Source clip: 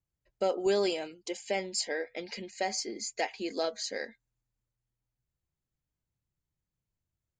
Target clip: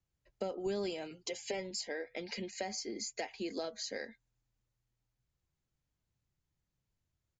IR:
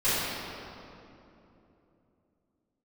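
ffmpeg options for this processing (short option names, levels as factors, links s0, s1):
-filter_complex "[0:a]aresample=16000,aresample=44100,asettb=1/sr,asplit=3[s0][s1][s2];[s0]atrim=end=1.104[s3];[s1]atrim=start=1.1:end=1.71,asetpts=PTS-STARTPTS,afade=t=in:d=0.004:c=qsin,afade=t=out:st=0.606:d=0.004:c=qsin,aecho=1:1:7.3:0.86,atrim=end_sample=26901[s4];[s2]atrim=start=1.706[s5];[s3][s4]acrossfade=d=0.004:c1=hsin:c2=qsin[s6];[s6][s5]acrossfade=d=0.004:c1=qsin:c2=hsin,acrossover=split=200[s7][s8];[s8]acompressor=threshold=0.00891:ratio=4[s9];[s7][s9]amix=inputs=2:normalize=0,volume=1.33"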